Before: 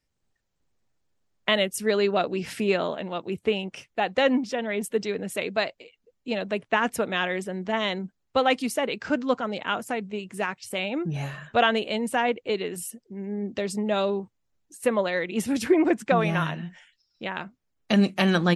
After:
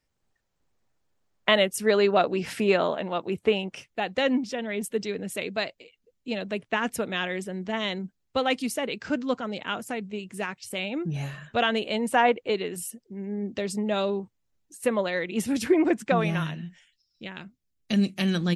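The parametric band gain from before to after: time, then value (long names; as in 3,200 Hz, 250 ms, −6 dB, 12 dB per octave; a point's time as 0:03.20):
parametric band 910 Hz 2.3 octaves
0:03.52 +3.5 dB
0:04.05 −5 dB
0:11.66 −5 dB
0:12.26 +5.5 dB
0:12.70 −2.5 dB
0:16.18 −2.5 dB
0:16.67 −13.5 dB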